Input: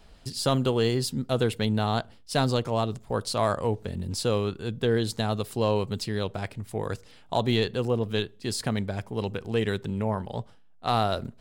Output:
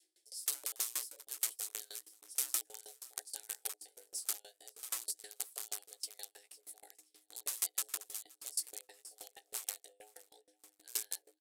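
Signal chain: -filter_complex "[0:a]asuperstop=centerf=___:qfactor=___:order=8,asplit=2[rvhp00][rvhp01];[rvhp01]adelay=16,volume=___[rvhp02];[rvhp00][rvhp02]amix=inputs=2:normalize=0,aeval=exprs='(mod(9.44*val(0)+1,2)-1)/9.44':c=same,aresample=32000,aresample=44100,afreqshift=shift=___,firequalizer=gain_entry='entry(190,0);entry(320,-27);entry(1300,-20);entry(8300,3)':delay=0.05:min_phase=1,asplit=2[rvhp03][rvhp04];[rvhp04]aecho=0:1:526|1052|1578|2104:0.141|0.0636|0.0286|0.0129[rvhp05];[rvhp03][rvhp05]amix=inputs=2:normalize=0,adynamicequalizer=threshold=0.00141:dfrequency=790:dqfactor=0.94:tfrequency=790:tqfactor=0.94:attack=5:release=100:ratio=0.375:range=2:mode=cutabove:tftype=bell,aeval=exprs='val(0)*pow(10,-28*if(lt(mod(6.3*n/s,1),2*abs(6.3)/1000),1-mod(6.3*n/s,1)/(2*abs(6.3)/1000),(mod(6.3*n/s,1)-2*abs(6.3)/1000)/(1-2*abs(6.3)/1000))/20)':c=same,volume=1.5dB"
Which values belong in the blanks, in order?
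810, 1.1, -4dB, 310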